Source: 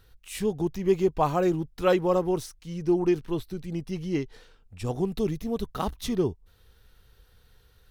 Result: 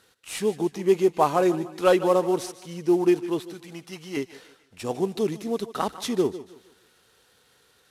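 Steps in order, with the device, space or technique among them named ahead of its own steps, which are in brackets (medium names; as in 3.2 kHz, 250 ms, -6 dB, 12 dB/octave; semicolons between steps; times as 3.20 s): early wireless headset (high-pass 250 Hz 12 dB/octave; CVSD coder 64 kbps); 3.40–4.17 s: resonant low shelf 630 Hz -7 dB, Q 1.5; thinning echo 148 ms, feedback 47%, high-pass 540 Hz, level -17 dB; modulated delay 155 ms, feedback 33%, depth 54 cents, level -18 dB; trim +4 dB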